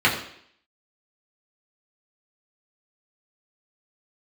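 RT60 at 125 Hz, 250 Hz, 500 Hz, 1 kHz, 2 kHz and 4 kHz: 0.55, 0.65, 0.65, 0.65, 0.70, 0.65 s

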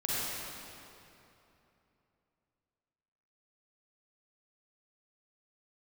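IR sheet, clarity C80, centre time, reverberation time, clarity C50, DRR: -4.0 dB, 0.21 s, 3.0 s, -7.0 dB, -8.5 dB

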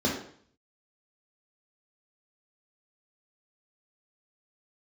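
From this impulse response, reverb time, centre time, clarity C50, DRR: 0.55 s, 39 ms, 4.5 dB, -2.0 dB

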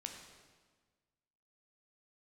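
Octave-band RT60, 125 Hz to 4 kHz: 1.7, 1.6, 1.5, 1.4, 1.3, 1.2 s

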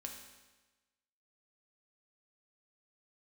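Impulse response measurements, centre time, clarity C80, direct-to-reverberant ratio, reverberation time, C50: 36 ms, 7.0 dB, 1.5 dB, 1.2 s, 5.5 dB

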